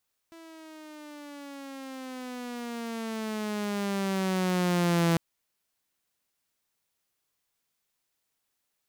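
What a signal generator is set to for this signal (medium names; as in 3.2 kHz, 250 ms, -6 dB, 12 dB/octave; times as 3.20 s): gliding synth tone saw, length 4.85 s, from 332 Hz, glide -12 st, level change +25.5 dB, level -18.5 dB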